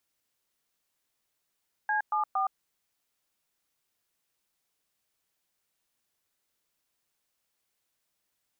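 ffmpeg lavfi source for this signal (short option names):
-f lavfi -i "aevalsrc='0.0422*clip(min(mod(t,0.231),0.117-mod(t,0.231))/0.002,0,1)*(eq(floor(t/0.231),0)*(sin(2*PI*852*mod(t,0.231))+sin(2*PI*1633*mod(t,0.231)))+eq(floor(t/0.231),1)*(sin(2*PI*852*mod(t,0.231))+sin(2*PI*1209*mod(t,0.231)))+eq(floor(t/0.231),2)*(sin(2*PI*770*mod(t,0.231))+sin(2*PI*1209*mod(t,0.231))))':d=0.693:s=44100"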